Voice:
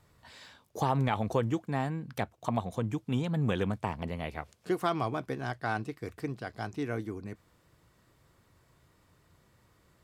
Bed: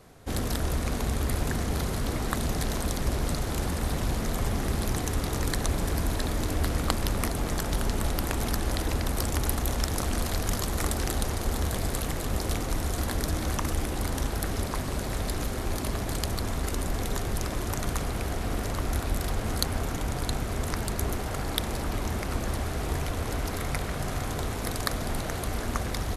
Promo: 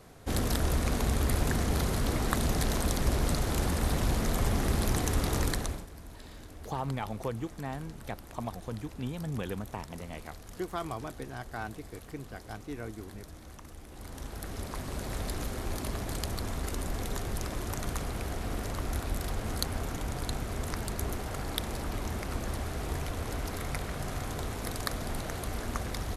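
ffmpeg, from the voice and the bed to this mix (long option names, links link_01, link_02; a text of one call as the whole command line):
ffmpeg -i stem1.wav -i stem2.wav -filter_complex "[0:a]adelay=5900,volume=-6dB[link_01];[1:a]volume=15dB,afade=type=out:start_time=5.4:duration=0.46:silence=0.105925,afade=type=in:start_time=13.84:duration=1.33:silence=0.177828[link_02];[link_01][link_02]amix=inputs=2:normalize=0" out.wav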